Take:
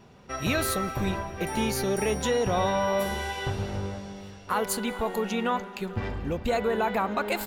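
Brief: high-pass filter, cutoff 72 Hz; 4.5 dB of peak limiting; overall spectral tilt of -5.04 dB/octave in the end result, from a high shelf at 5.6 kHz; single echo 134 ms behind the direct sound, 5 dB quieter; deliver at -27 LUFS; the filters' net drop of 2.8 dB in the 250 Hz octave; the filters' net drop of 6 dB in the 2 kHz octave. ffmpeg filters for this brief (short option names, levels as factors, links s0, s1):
-af "highpass=72,equalizer=f=250:t=o:g=-3.5,equalizer=f=2000:t=o:g=-7.5,highshelf=f=5600:g=-4.5,alimiter=limit=0.0891:level=0:latency=1,aecho=1:1:134:0.562,volume=1.5"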